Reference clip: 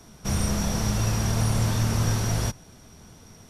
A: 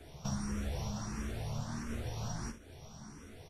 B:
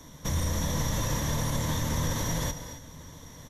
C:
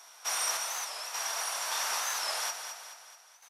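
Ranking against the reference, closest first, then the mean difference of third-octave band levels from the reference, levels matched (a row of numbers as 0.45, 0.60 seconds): B, A, C; 5.0, 6.5, 15.0 decibels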